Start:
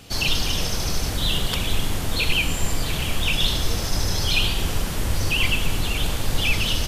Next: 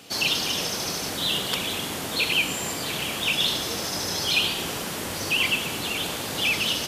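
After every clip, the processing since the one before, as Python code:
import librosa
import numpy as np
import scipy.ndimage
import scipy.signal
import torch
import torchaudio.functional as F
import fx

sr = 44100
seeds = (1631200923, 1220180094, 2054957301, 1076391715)

y = scipy.signal.sosfilt(scipy.signal.butter(2, 220.0, 'highpass', fs=sr, output='sos'), x)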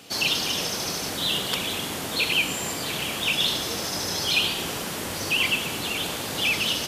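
y = x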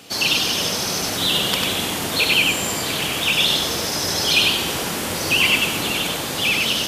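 y = fx.rider(x, sr, range_db=10, speed_s=2.0)
y = y + 10.0 ** (-3.5 / 20.0) * np.pad(y, (int(96 * sr / 1000.0), 0))[:len(y)]
y = F.gain(torch.from_numpy(y), 4.0).numpy()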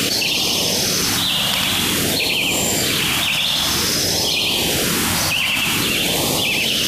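y = fx.filter_lfo_notch(x, sr, shape='sine', hz=0.51, low_hz=380.0, high_hz=1600.0, q=1.1)
y = fx.env_flatten(y, sr, amount_pct=100)
y = F.gain(torch.from_numpy(y), -4.0).numpy()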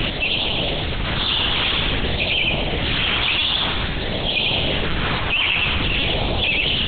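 y = fx.lpc_vocoder(x, sr, seeds[0], excitation='pitch_kept', order=8)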